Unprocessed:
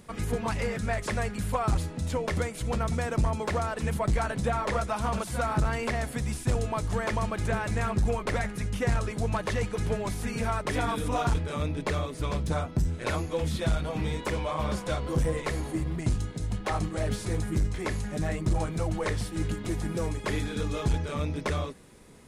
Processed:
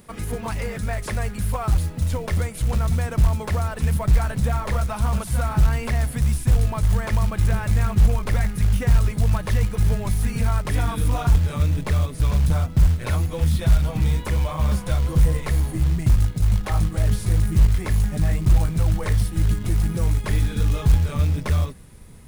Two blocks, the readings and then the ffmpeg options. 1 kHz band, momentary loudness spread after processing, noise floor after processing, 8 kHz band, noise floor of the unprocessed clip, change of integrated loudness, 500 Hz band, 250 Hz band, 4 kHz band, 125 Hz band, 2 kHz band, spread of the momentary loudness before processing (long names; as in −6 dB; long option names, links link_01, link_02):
0.0 dB, 5 LU, −34 dBFS, +4.5 dB, −40 dBFS, +8.0 dB, −1.5 dB, +3.5 dB, +2.5 dB, +10.5 dB, +1.0 dB, 4 LU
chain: -filter_complex "[0:a]asplit=2[link_01][link_02];[link_02]alimiter=limit=-23dB:level=0:latency=1:release=106,volume=-2dB[link_03];[link_01][link_03]amix=inputs=2:normalize=0,asubboost=boost=4.5:cutoff=150,aexciter=amount=2.1:drive=5.6:freq=9600,aeval=exprs='0.841*(cos(1*acos(clip(val(0)/0.841,-1,1)))-cos(1*PI/2))+0.00473*(cos(4*acos(clip(val(0)/0.841,-1,1)))-cos(4*PI/2))+0.0422*(cos(5*acos(clip(val(0)/0.841,-1,1)))-cos(5*PI/2))+0.0106*(cos(6*acos(clip(val(0)/0.841,-1,1)))-cos(6*PI/2))+0.0188*(cos(7*acos(clip(val(0)/0.841,-1,1)))-cos(7*PI/2))':channel_layout=same,acrusher=bits=6:mode=log:mix=0:aa=0.000001,volume=-4dB"